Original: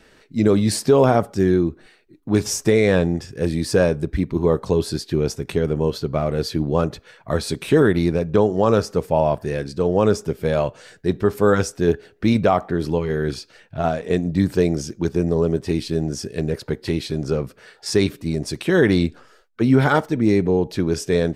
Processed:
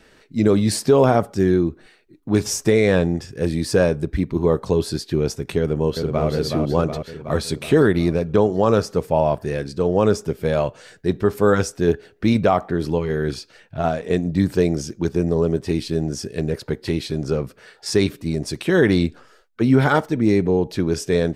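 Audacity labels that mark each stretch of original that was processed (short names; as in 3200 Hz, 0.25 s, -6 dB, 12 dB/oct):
5.590000	6.280000	echo throw 0.37 s, feedback 65%, level -5 dB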